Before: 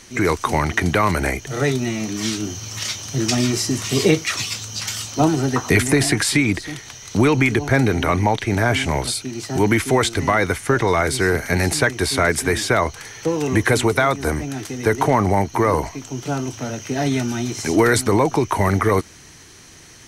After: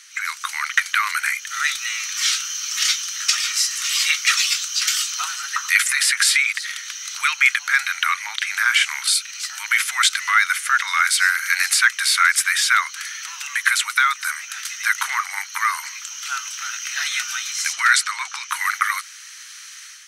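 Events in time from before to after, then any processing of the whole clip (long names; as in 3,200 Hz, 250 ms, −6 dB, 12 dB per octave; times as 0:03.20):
0:08.57–0:09.92: transient designer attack −6 dB, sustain −2 dB
0:17.73–0:18.50: low-pass filter 7,900 Hz
whole clip: elliptic high-pass filter 1,300 Hz, stop band 60 dB; automatic gain control gain up to 8 dB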